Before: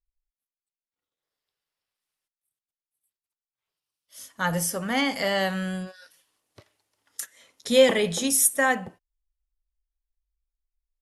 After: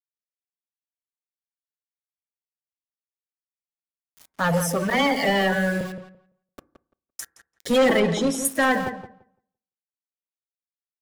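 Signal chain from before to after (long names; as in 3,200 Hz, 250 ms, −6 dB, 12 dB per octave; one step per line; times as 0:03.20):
spectral magnitudes quantised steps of 30 dB
high-shelf EQ 3,200 Hz −10 dB
in parallel at −3 dB: brickwall limiter −18.5 dBFS, peak gain reduction 11 dB
on the sum: soft clipping −18.5 dBFS, distortion −10 dB
0:04.90–0:05.81: all-pass dispersion lows, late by 43 ms, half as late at 770 Hz
centre clipping without the shift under −39 dBFS
0:08.00–0:08.45: high-frequency loss of the air 74 metres
feedback echo with a low-pass in the loop 170 ms, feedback 16%, low-pass 2,400 Hz, level −9.5 dB
on a send at −19.5 dB: convolution reverb RT60 0.55 s, pre-delay 3 ms
on the sum: level +4 dB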